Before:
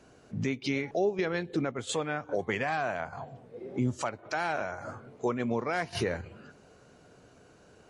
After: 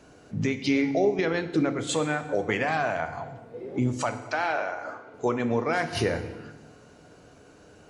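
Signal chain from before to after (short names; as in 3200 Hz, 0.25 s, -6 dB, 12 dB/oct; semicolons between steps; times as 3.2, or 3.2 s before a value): 4.25–5.14 three-band isolator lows -19 dB, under 300 Hz, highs -16 dB, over 5600 Hz; FDN reverb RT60 1.1 s, low-frequency decay 1.35×, high-frequency decay 0.9×, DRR 8 dB; gain +4 dB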